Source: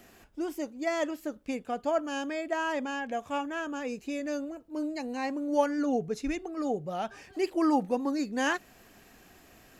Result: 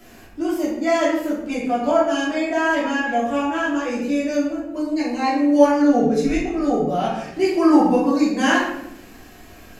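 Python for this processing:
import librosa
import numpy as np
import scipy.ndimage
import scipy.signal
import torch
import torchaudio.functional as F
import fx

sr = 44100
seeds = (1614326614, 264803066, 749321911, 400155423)

y = fx.room_shoebox(x, sr, seeds[0], volume_m3=240.0, walls='mixed', distance_m=3.0)
y = y * librosa.db_to_amplitude(1.5)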